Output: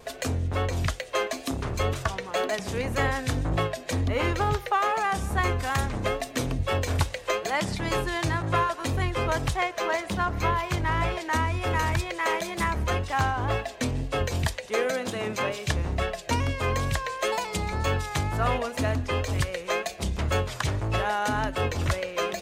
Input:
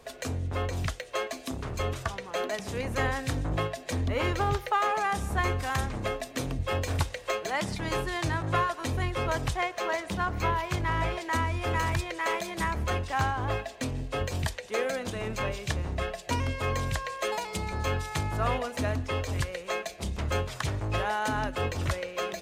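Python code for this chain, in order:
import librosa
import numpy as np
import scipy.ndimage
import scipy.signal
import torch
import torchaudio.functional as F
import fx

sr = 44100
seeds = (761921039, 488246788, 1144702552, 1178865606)

p1 = fx.highpass(x, sr, hz=fx.line((14.91, 110.0), (15.66, 220.0)), slope=12, at=(14.91, 15.66), fade=0.02)
p2 = fx.rider(p1, sr, range_db=10, speed_s=0.5)
p3 = p1 + (p2 * 10.0 ** (-3.0 / 20.0))
p4 = fx.wow_flutter(p3, sr, seeds[0], rate_hz=2.1, depth_cents=53.0)
y = p4 * 10.0 ** (-1.5 / 20.0)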